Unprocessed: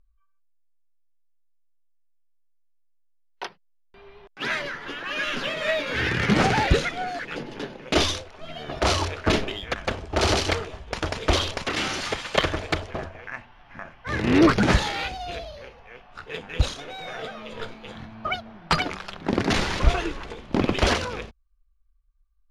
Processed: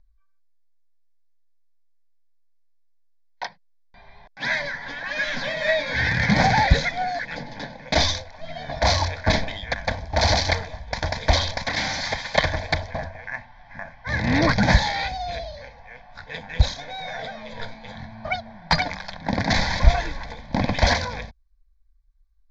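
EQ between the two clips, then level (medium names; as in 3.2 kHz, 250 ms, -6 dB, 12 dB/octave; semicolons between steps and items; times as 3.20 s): Chebyshev low-pass 8.6 kHz, order 10; static phaser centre 1.9 kHz, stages 8; +5.5 dB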